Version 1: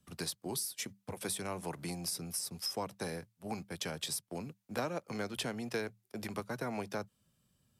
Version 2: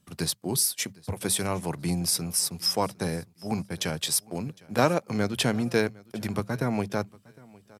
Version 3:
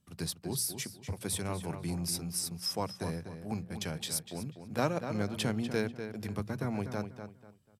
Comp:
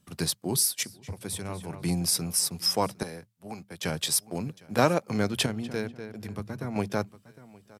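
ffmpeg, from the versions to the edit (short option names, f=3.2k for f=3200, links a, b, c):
-filter_complex "[2:a]asplit=2[a][b];[1:a]asplit=4[c][d][e][f];[c]atrim=end=0.832[g];[a]atrim=start=0.828:end=1.822[h];[d]atrim=start=1.818:end=3.032[i];[0:a]atrim=start=3.028:end=3.832[j];[e]atrim=start=3.828:end=5.462[k];[b]atrim=start=5.458:end=6.762[l];[f]atrim=start=6.758[m];[g][h]acrossfade=d=0.004:c1=hsin:c2=hsin[n];[n][i]acrossfade=d=0.004:c1=hsin:c2=hsin[o];[o][j]acrossfade=d=0.004:c1=hsin:c2=hsin[p];[p][k]acrossfade=d=0.004:c1=hsin:c2=hsin[q];[q][l]acrossfade=d=0.004:c1=hsin:c2=hsin[r];[r][m]acrossfade=d=0.004:c1=hsin:c2=hsin"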